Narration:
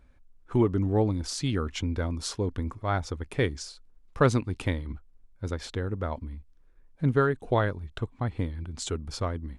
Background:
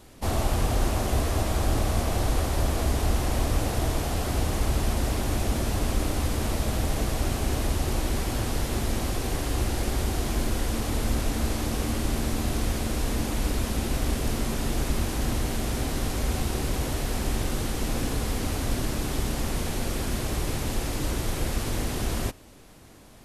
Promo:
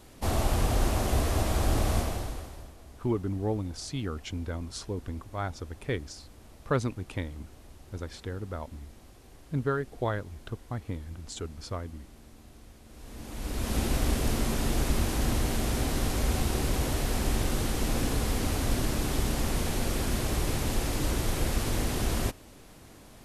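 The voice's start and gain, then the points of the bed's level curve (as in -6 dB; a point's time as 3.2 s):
2.50 s, -5.5 dB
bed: 1.97 s -1.5 dB
2.77 s -25 dB
12.83 s -25 dB
13.76 s -0.5 dB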